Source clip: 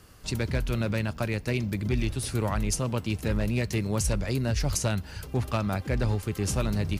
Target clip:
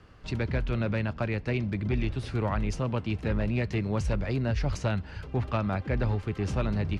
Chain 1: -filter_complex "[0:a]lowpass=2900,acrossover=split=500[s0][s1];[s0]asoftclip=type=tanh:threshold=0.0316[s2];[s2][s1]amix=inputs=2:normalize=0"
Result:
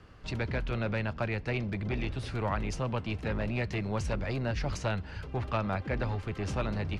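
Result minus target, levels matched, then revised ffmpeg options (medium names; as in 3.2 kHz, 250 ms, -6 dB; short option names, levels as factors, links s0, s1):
saturation: distortion +14 dB
-filter_complex "[0:a]lowpass=2900,acrossover=split=500[s0][s1];[s0]asoftclip=type=tanh:threshold=0.119[s2];[s2][s1]amix=inputs=2:normalize=0"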